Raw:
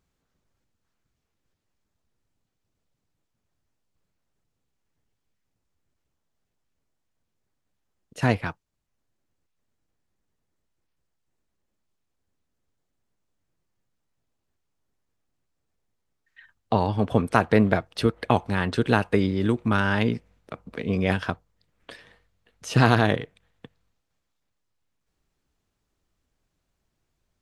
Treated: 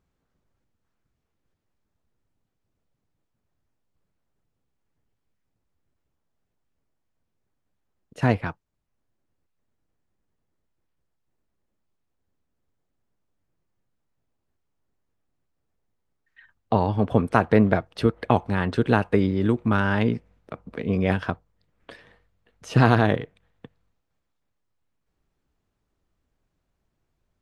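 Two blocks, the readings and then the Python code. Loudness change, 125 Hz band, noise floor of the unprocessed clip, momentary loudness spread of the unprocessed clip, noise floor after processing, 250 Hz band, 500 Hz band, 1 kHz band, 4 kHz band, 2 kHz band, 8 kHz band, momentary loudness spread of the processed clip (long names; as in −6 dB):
+1.0 dB, +1.5 dB, −79 dBFS, 15 LU, −78 dBFS, +1.5 dB, +1.0 dB, +0.5 dB, −4.0 dB, −1.0 dB, can't be measured, 14 LU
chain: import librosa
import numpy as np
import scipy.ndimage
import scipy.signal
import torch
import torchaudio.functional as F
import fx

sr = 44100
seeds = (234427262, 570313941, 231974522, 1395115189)

y = fx.high_shelf(x, sr, hz=2700.0, db=-9.0)
y = y * librosa.db_to_amplitude(1.5)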